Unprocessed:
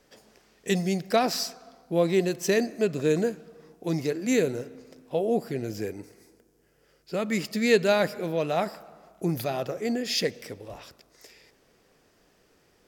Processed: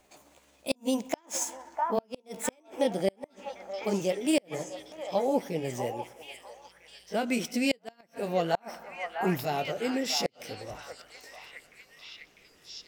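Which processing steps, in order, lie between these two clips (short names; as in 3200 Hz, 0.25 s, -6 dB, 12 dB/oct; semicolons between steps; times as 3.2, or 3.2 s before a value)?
gliding pitch shift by +5.5 st ending unshifted; delay with a stepping band-pass 0.65 s, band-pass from 990 Hz, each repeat 0.7 oct, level -4 dB; flipped gate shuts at -14 dBFS, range -37 dB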